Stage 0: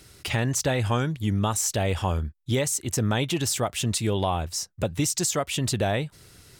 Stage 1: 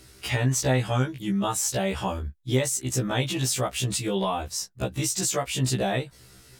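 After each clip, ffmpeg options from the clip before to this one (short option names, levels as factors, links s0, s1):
-af "afftfilt=real='re*1.73*eq(mod(b,3),0)':imag='im*1.73*eq(mod(b,3),0)':win_size=2048:overlap=0.75,volume=1.26"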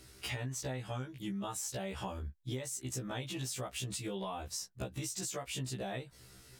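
-af "acompressor=threshold=0.0282:ratio=6,volume=0.531"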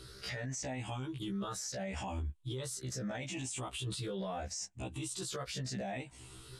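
-af "afftfilt=real='re*pow(10,11/40*sin(2*PI*(0.62*log(max(b,1)*sr/1024/100)/log(2)-(0.76)*(pts-256)/sr)))':imag='im*pow(10,11/40*sin(2*PI*(0.62*log(max(b,1)*sr/1024/100)/log(2)-(0.76)*(pts-256)/sr)))':win_size=1024:overlap=0.75,lowpass=f=9700:w=0.5412,lowpass=f=9700:w=1.3066,alimiter=level_in=3.76:limit=0.0631:level=0:latency=1:release=11,volume=0.266,volume=1.5"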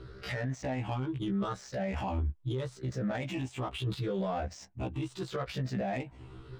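-af "adynamicsmooth=sensitivity=8:basefreq=1500,volume=2.11"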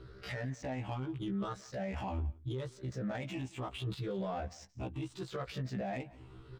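-af "aecho=1:1:175:0.0794,volume=0.596"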